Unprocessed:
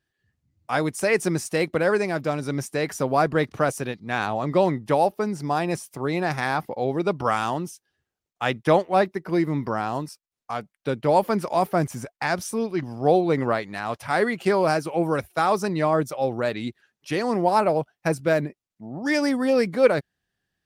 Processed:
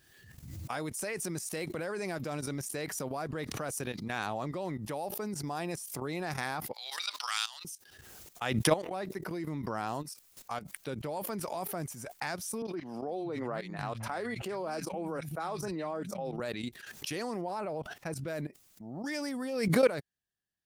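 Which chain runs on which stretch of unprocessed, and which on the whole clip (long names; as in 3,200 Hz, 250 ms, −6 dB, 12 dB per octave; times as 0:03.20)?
0:06.73–0:07.65: Bessel high-pass filter 1,900 Hz, order 4 + parametric band 4,200 Hz +14 dB 1 octave
0:12.62–0:16.40: low-pass filter 3,100 Hz 6 dB per octave + three-band delay without the direct sound mids, highs, lows 30/460 ms, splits 170/1,900 Hz
0:17.41–0:18.28: low-pass filter 3,800 Hz 6 dB per octave + de-essing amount 35%
whole clip: output level in coarse steps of 15 dB; high-shelf EQ 5,500 Hz +11.5 dB; background raised ahead of every attack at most 43 dB per second; level −6 dB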